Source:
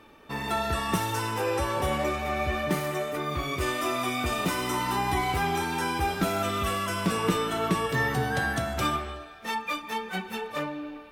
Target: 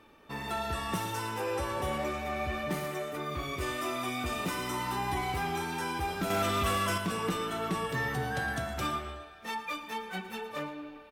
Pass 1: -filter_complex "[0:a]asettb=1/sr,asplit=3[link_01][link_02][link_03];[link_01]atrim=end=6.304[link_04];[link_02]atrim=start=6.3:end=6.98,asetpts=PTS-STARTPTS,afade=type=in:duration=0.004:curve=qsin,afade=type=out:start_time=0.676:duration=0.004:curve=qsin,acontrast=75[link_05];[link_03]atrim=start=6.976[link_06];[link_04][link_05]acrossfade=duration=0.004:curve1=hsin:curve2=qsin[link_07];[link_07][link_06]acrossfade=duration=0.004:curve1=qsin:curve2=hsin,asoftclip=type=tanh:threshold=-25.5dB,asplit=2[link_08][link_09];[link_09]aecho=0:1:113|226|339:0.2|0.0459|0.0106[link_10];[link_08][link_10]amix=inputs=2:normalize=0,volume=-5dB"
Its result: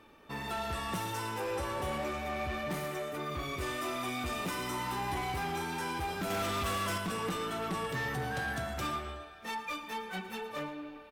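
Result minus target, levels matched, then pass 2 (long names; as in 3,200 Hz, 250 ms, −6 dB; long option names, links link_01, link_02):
soft clipping: distortion +7 dB
-filter_complex "[0:a]asettb=1/sr,asplit=3[link_01][link_02][link_03];[link_01]atrim=end=6.304[link_04];[link_02]atrim=start=6.3:end=6.98,asetpts=PTS-STARTPTS,afade=type=in:duration=0.004:curve=qsin,afade=type=out:start_time=0.676:duration=0.004:curve=qsin,acontrast=75[link_05];[link_03]atrim=start=6.976[link_06];[link_04][link_05]acrossfade=duration=0.004:curve1=hsin:curve2=qsin[link_07];[link_07][link_06]acrossfade=duration=0.004:curve1=qsin:curve2=hsin,asoftclip=type=tanh:threshold=-18dB,asplit=2[link_08][link_09];[link_09]aecho=0:1:113|226|339:0.2|0.0459|0.0106[link_10];[link_08][link_10]amix=inputs=2:normalize=0,volume=-5dB"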